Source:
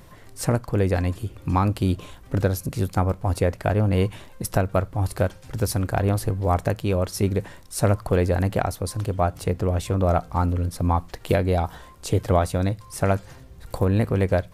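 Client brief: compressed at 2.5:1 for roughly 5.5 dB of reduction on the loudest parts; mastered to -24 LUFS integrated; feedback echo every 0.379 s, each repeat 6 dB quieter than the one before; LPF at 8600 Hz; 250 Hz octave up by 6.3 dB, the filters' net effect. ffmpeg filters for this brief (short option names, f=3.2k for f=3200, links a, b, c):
-af "lowpass=8.6k,equalizer=f=250:t=o:g=8.5,acompressor=threshold=-21dB:ratio=2.5,aecho=1:1:379|758|1137|1516|1895|2274:0.501|0.251|0.125|0.0626|0.0313|0.0157,volume=0.5dB"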